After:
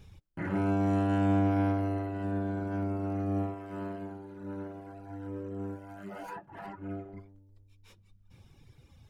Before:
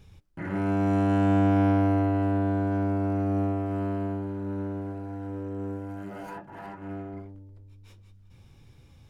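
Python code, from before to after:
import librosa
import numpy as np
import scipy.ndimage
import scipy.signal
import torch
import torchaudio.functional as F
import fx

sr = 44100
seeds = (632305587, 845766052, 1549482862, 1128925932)

y = fx.dereverb_blind(x, sr, rt60_s=1.4)
y = fx.low_shelf(y, sr, hz=210.0, db=-7.0, at=(3.54, 4.93))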